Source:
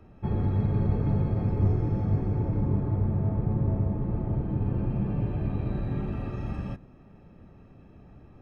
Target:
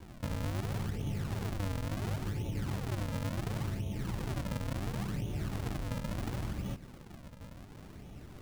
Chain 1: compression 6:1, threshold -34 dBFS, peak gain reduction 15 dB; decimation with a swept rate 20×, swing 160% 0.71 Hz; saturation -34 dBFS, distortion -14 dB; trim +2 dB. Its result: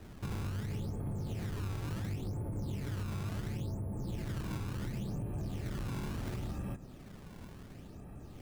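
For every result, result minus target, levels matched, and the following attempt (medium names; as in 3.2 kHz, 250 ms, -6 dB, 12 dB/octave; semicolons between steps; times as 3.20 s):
decimation with a swept rate: distortion -10 dB; saturation: distortion +9 dB
compression 6:1, threshold -34 dBFS, peak gain reduction 15 dB; decimation with a swept rate 67×, swing 160% 0.71 Hz; saturation -34 dBFS, distortion -14 dB; trim +2 dB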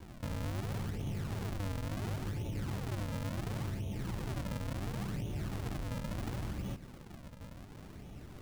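saturation: distortion +9 dB
compression 6:1, threshold -34 dBFS, peak gain reduction 15 dB; decimation with a swept rate 67×, swing 160% 0.71 Hz; saturation -27.5 dBFS, distortion -23 dB; trim +2 dB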